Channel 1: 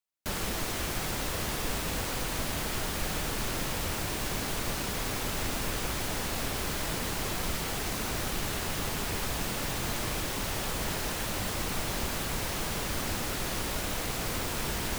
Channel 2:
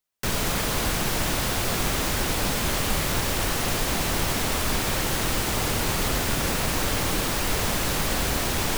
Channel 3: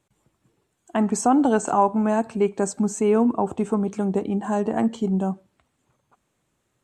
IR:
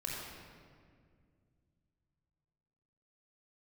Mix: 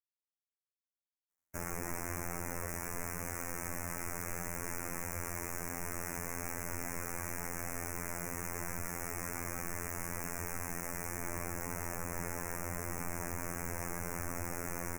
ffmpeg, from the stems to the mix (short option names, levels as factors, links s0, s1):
-filter_complex "[0:a]adelay=1300,volume=1.41[s0];[1:a]highpass=1400,adelay=2450,volume=0.596[s1];[s0][s1]amix=inputs=2:normalize=0,afftfilt=real='hypot(re,im)*cos(PI*b)':imag='0':win_size=2048:overlap=0.75,asuperstop=centerf=3700:order=8:qfactor=1.1,alimiter=limit=0.0841:level=0:latency=1"